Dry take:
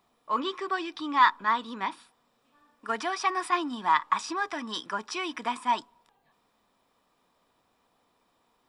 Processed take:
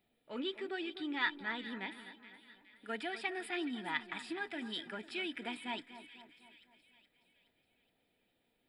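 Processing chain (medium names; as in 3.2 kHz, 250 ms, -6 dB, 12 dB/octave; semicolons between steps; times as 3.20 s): static phaser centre 2.6 kHz, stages 4; two-band feedback delay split 1.8 kHz, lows 250 ms, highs 420 ms, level -13 dB; trim -4.5 dB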